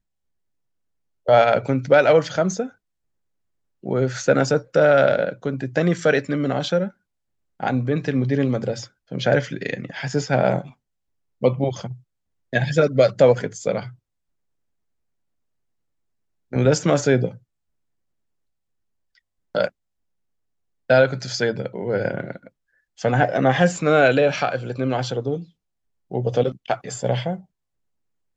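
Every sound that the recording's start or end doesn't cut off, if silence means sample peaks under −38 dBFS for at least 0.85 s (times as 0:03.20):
0:01.26–0:02.69
0:03.84–0:13.92
0:16.52–0:17.37
0:19.55–0:19.69
0:20.90–0:27.40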